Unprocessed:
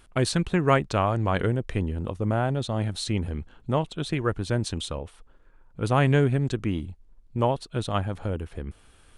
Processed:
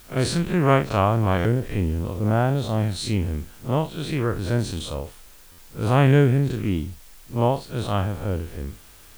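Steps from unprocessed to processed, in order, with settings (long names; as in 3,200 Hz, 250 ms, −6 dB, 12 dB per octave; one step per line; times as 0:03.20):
spectrum smeared in time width 92 ms
in parallel at −4 dB: bit-depth reduction 8 bits, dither triangular
on the sum: buffer that repeats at 0:01.38/0:05.51, samples 512, times 5
level +1 dB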